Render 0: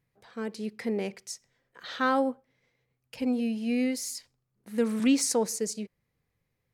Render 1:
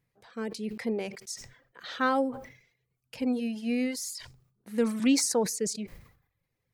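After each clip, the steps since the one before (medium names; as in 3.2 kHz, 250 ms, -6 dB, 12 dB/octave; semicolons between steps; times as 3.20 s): reverb removal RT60 0.69 s; decay stretcher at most 96 dB/s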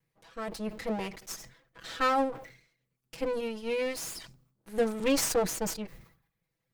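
comb filter that takes the minimum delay 6.1 ms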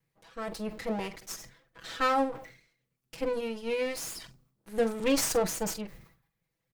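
doubling 44 ms -14 dB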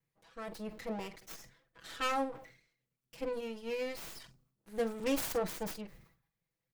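tracing distortion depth 0.43 ms; trim -6.5 dB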